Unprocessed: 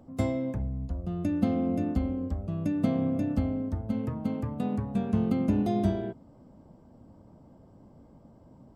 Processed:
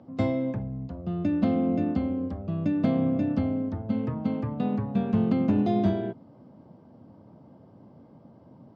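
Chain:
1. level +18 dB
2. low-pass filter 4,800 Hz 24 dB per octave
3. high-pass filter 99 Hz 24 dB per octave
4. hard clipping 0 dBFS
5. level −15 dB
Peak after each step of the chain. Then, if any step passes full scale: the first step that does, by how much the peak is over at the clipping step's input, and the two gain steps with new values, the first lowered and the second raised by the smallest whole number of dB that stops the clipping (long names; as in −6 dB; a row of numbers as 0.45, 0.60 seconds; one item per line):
+5.5, +5.5, +6.0, 0.0, −15.0 dBFS
step 1, 6.0 dB
step 1 +12 dB, step 5 −9 dB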